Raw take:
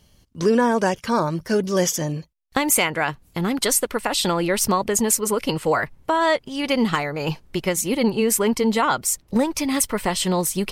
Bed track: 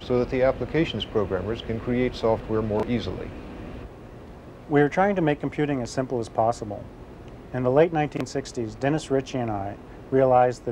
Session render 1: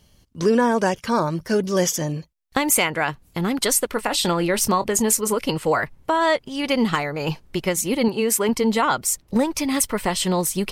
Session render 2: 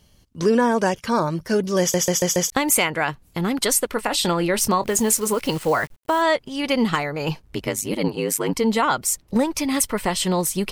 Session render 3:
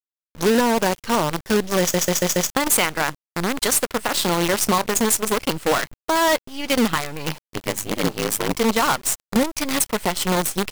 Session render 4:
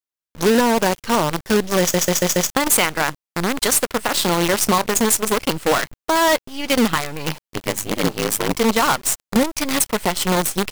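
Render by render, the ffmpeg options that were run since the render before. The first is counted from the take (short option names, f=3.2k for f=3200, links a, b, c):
-filter_complex "[0:a]asettb=1/sr,asplit=3[a][b][c];[a]atrim=end=3.884[d];[b]atrim=start=3.88:end=5.37,asetpts=PTS-STARTPTS,afade=t=in:d=0.004:c=qsin,afade=t=out:st=1.486:d=0.004:c=qsin,asplit=2[e][f];[f]adelay=23,volume=-14dB[g];[e][g]amix=inputs=2:normalize=0,atrim=end_sample=65709[h];[c]atrim=start=5.366[i];[d][h]acrossfade=d=0.004:c1=hsin:c2=qsin[j];[j][i]acrossfade=d=0.004:c1=qsin:c2=hsin,asettb=1/sr,asplit=3[k][l][m];[k]atrim=end=8.084[n];[l]atrim=start=8.08:end=8.49,asetpts=PTS-STARTPTS,afade=t=in:d=0.004:c=qsin,afade=t=out:st=0.406:d=0.004:c=qsin,highpass=f=220:p=1[o];[m]atrim=start=8.486[p];[n][o]acrossfade=d=0.004:c1=hsin:c2=qsin[q];[q][p]acrossfade=d=0.004:c1=qsin:c2=hsin"
-filter_complex "[0:a]asplit=3[a][b][c];[a]afade=t=out:st=4.83:d=0.02[d];[b]acrusher=bits=7:dc=4:mix=0:aa=0.000001,afade=t=in:st=4.83:d=0.02,afade=t=out:st=6.21:d=0.02[e];[c]afade=t=in:st=6.21:d=0.02[f];[d][e][f]amix=inputs=3:normalize=0,asplit=3[g][h][i];[g]afade=t=out:st=7.41:d=0.02[j];[h]aeval=exprs='val(0)*sin(2*PI*51*n/s)':c=same,afade=t=in:st=7.41:d=0.02,afade=t=out:st=8.53:d=0.02[k];[i]afade=t=in:st=8.53:d=0.02[l];[j][k][l]amix=inputs=3:normalize=0,asplit=6[m][n][o][p][q][r];[m]atrim=end=1.942[s];[n]atrim=start=1.798:end=1.942[t];[o]atrim=start=1.798:end=1.942[u];[p]atrim=start=1.798:end=1.942[v];[q]atrim=start=1.798:end=1.942[w];[r]atrim=start=2.498[x];[s][t]acrossfade=d=0.004:c1=hsin:c2=hsin[y];[y][u]acrossfade=d=0.004:c1=hsin:c2=hsin[z];[z][v]acrossfade=d=0.004:c1=hsin:c2=hsin[aa];[aa][w]acrossfade=d=0.004:c1=hsin:c2=hsin[ab];[ab][x]acrossfade=d=0.004:c1=hsin:c2=hsin"
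-af "acrusher=bits=4:dc=4:mix=0:aa=0.000001"
-af "volume=2dB"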